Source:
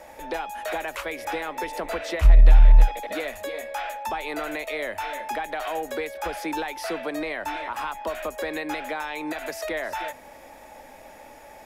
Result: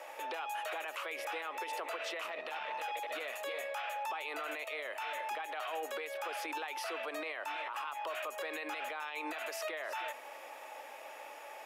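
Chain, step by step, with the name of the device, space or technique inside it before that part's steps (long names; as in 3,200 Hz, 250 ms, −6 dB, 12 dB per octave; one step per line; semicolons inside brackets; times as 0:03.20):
laptop speaker (high-pass filter 380 Hz 24 dB per octave; parametric band 1,200 Hz +8 dB 0.46 octaves; parametric band 2,800 Hz +9 dB 0.52 octaves; brickwall limiter −27 dBFS, peak gain reduction 12.5 dB)
level −4 dB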